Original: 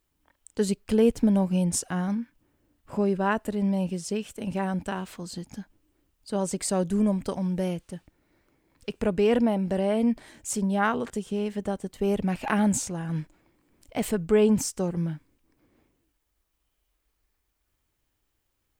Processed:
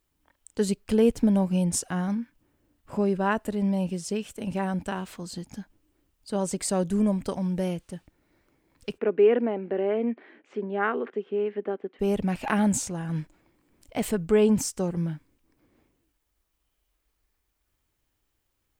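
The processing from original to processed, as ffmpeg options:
ffmpeg -i in.wav -filter_complex "[0:a]asplit=3[link_01][link_02][link_03];[link_01]afade=type=out:start_time=8.97:duration=0.02[link_04];[link_02]highpass=frequency=260:width=0.5412,highpass=frequency=260:width=1.3066,equalizer=frequency=400:width_type=q:width=4:gain=6,equalizer=frequency=610:width_type=q:width=4:gain=-4,equalizer=frequency=930:width_type=q:width=4:gain=-6,lowpass=frequency=2500:width=0.5412,lowpass=frequency=2500:width=1.3066,afade=type=in:start_time=8.97:duration=0.02,afade=type=out:start_time=11.99:duration=0.02[link_05];[link_03]afade=type=in:start_time=11.99:duration=0.02[link_06];[link_04][link_05][link_06]amix=inputs=3:normalize=0" out.wav

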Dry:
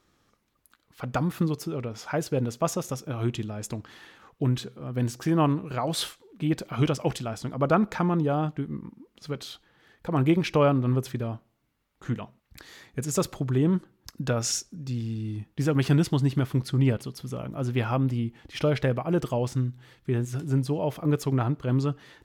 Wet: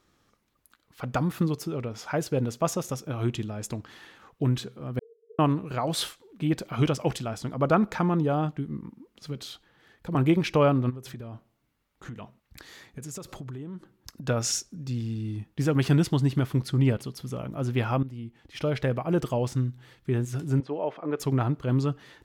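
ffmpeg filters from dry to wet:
ffmpeg -i in.wav -filter_complex "[0:a]asettb=1/sr,asplit=3[link_01][link_02][link_03];[link_01]atrim=end=4.994[link_04];[link_02]atrim=start=4.99:end=5.39,asetpts=PTS-STARTPTS,afade=type=in:duration=0.004:curve=qsin,afade=type=out:start_time=0.396:duration=0.004:curve=qsin,asuperpass=centerf=440:order=20:qfactor=7.4[link_05];[link_03]atrim=start=5.386[link_06];[link_04][link_05]acrossfade=duration=0.004:curve1=hsin:curve2=qsin[link_07];[link_07][link_06]acrossfade=duration=0.004:curve1=qsin:curve2=hsin,asettb=1/sr,asplit=3[link_08][link_09][link_10];[link_08]atrim=end=8.524[link_11];[link_09]atrim=start=8.52:end=10.15,asetpts=PTS-STARTPTS,afade=type=in:duration=0.004:curve=qsin,afade=type=out:start_time=1.626:duration=0.004:curve=qsin,acrossover=split=360|3000[link_12][link_13][link_14];[link_13]acompressor=threshold=-45dB:ratio=6:attack=3.2:release=140:knee=2.83:detection=peak[link_15];[link_12][link_15][link_14]amix=inputs=3:normalize=0[link_16];[link_10]atrim=start=10.146[link_17];[link_11][link_16]acrossfade=duration=0.004:curve1=hsin:curve2=qsin[link_18];[link_18][link_17]acrossfade=duration=0.004:curve1=qsin:curve2=hsin,asplit=3[link_19][link_20][link_21];[link_19]afade=type=out:start_time=10.89:duration=0.02[link_22];[link_20]acompressor=threshold=-34dB:ratio=16:attack=3.2:release=140:knee=1:detection=peak,afade=type=in:start_time=10.89:duration=0.02,afade=type=out:start_time=14.27:duration=0.02[link_23];[link_21]afade=type=in:start_time=14.27:duration=0.02[link_24];[link_22][link_23][link_24]amix=inputs=3:normalize=0,asettb=1/sr,asplit=3[link_25][link_26][link_27];[link_25]atrim=end=20.604[link_28];[link_26]atrim=start=20.6:end=21.2,asetpts=PTS-STARTPTS,afade=type=in:duration=0.004:curve=qsin,afade=type=out:start_time=0.596:duration=0.004:curve=qsin,highpass=350,lowpass=2300[link_29];[link_27]atrim=start=21.196[link_30];[link_28][link_29]acrossfade=duration=0.004:curve1=hsin:curve2=qsin[link_31];[link_31][link_30]acrossfade=duration=0.004:curve1=qsin:curve2=hsin,asplit=2[link_32][link_33];[link_32]atrim=end=18.03,asetpts=PTS-STARTPTS,afade=type=out:start_time=18.026:duration=0.004:curve=hsin:silence=0.188365[link_34];[link_33]atrim=start=18.03,asetpts=PTS-STARTPTS,afade=type=in:duration=1.06:silence=0.188365[link_35];[link_34][link_35]concat=n=2:v=0:a=1" out.wav

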